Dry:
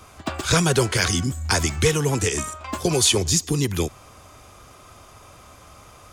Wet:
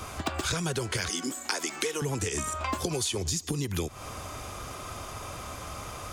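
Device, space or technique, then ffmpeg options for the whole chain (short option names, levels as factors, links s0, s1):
serial compression, peaks first: -filter_complex "[0:a]asettb=1/sr,asplit=3[s0][s1][s2];[s0]atrim=end=1.094[s3];[s1]atrim=start=1.09:end=2.02,asetpts=PTS-STARTPTS,afade=t=in:d=0.004:c=qsin,afade=t=out:st=0.926:d=0.004:c=qsin,highpass=f=280:w=0.5412,highpass=f=280:w=1.3066[s4];[s2]atrim=start=2.016[s5];[s3][s4]acrossfade=d=0.004:c1=hsin:c2=qsin[s6];[s6][s5]acrossfade=d=0.004:c1=qsin:c2=hsin,acompressor=threshold=0.0316:ratio=5,acompressor=threshold=0.0141:ratio=2.5,volume=2.37"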